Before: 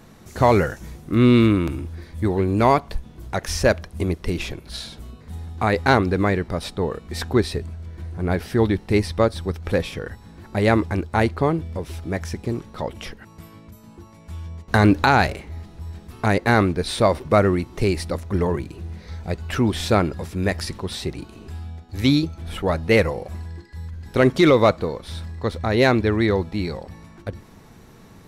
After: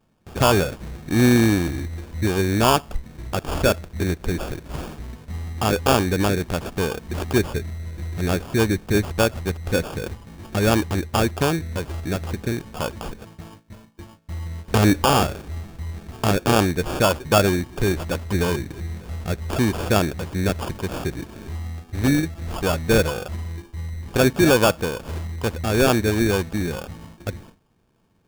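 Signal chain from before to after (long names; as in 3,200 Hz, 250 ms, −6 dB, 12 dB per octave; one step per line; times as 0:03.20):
noise gate with hold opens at −34 dBFS
in parallel at −0.5 dB: downward compressor, threshold −28 dBFS, peak gain reduction 16 dB
on the sum: sample-rate reduction 2,000 Hz, jitter 0%
level −2.5 dB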